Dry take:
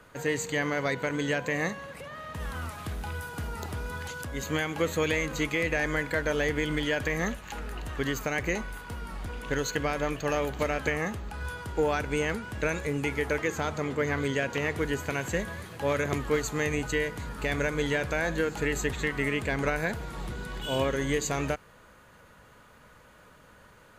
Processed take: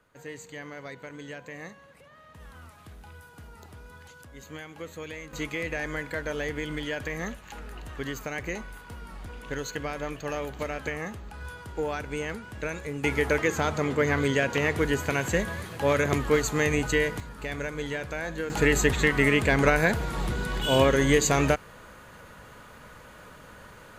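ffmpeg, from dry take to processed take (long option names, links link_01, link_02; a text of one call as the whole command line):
ffmpeg -i in.wav -af "asetnsamples=nb_out_samples=441:pad=0,asendcmd='5.33 volume volume -4dB;13.04 volume volume 4dB;17.2 volume volume -4.5dB;18.5 volume volume 7dB',volume=-12dB" out.wav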